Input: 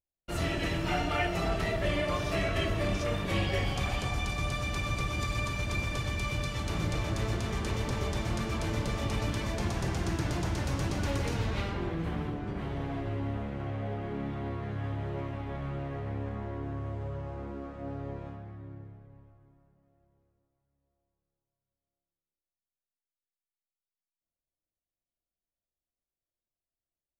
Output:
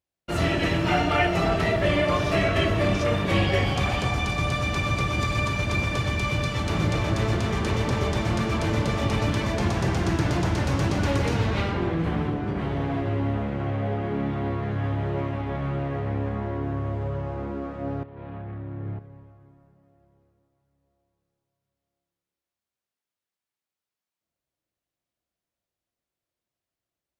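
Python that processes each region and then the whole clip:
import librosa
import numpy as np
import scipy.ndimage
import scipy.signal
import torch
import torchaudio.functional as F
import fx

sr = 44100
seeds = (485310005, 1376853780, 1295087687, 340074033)

y = fx.chain(x, sr, fx.law_mismatch(coded='mu'),
    fx.lowpass(hz=3600.0, slope=24),
    fx.over_compress(threshold_db=-42.0, ratio=-0.5), at=(18.03, 18.99))
y = scipy.signal.sosfilt(scipy.signal.butter(2, 69.0, 'highpass', fs=sr, output='sos'), y)
y = fx.high_shelf(y, sr, hz=5900.0, db=-8.5)
y = y * 10.0 ** (8.5 / 20.0)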